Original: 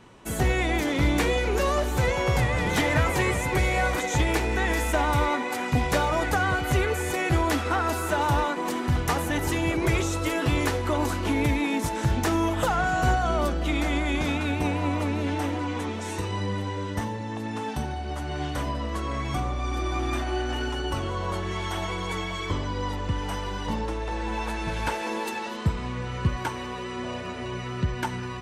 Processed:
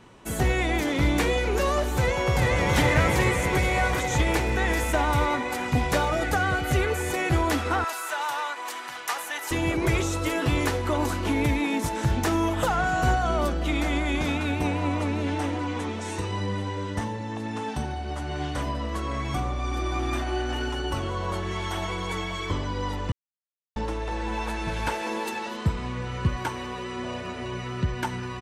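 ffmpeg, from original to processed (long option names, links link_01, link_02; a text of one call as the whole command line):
ffmpeg -i in.wav -filter_complex "[0:a]asplit=2[link_01][link_02];[link_02]afade=type=in:start_time=1.99:duration=0.01,afade=type=out:start_time=2.73:duration=0.01,aecho=0:1:420|840|1260|1680|2100|2520|2940|3360|3780|4200|4620|5040:0.841395|0.588977|0.412284|0.288599|0.202019|0.141413|0.0989893|0.0692925|0.0485048|0.0339533|0.0237673|0.0166371[link_03];[link_01][link_03]amix=inputs=2:normalize=0,asettb=1/sr,asplit=3[link_04][link_05][link_06];[link_04]atrim=end=6.044[link_07];[link_05]atrim=start=6.04:end=6.8,asetpts=PTS-STARTPTS,afade=type=in:duration=0.004:curve=qsin,afade=type=out:start_time=0.756:duration=0.004:curve=qsin,asuperstop=centerf=1000:order=4:qfactor=5.4[link_08];[link_06]atrim=start=6.796[link_09];[link_07][link_08]acrossfade=duration=0.004:curve1=hsin:curve2=qsin[link_10];[link_10][link_09]acrossfade=duration=0.004:curve1=qsin:curve2=hsin,asettb=1/sr,asplit=3[link_11][link_12][link_13];[link_11]atrim=end=7.844[link_14];[link_12]atrim=start=7.84:end=9.51,asetpts=PTS-STARTPTS,afade=type=in:duration=0.004:curve=qsin,afade=type=out:start_time=1.666:duration=0.004:curve=qsin,highpass=980[link_15];[link_13]atrim=start=9.506[link_16];[link_14][link_15]acrossfade=duration=0.004:curve1=hsin:curve2=qsin[link_17];[link_17][link_16]acrossfade=duration=0.004:curve1=qsin:curve2=hsin,asettb=1/sr,asplit=3[link_18][link_19][link_20];[link_18]atrim=end=14.654[link_21];[link_19]atrim=start=14.65:end=18.62,asetpts=PTS-STARTPTS,afade=type=in:duration=0.004:curve=qsin,afade=type=out:start_time=3.966:duration=0.004:curve=qsin,lowpass=frequency=11000:width=0.5412,lowpass=frequency=11000:width=1.3066[link_22];[link_20]atrim=start=18.616[link_23];[link_21][link_22]acrossfade=duration=0.004:curve1=hsin:curve2=qsin[link_24];[link_24][link_23]acrossfade=duration=0.004:curve1=qsin:curve2=hsin,asplit=3[link_25][link_26][link_27];[link_25]atrim=end=23.12,asetpts=PTS-STARTPTS,afade=type=out:start_time=23.116:duration=0.004:curve=hsin[link_28];[link_26]atrim=start=23.12:end=23.76,asetpts=PTS-STARTPTS,volume=0[link_29];[link_27]atrim=start=23.76,asetpts=PTS-STARTPTS,afade=type=in:duration=0.004:curve=hsin[link_30];[link_28][link_29][link_30]concat=n=3:v=0:a=1" out.wav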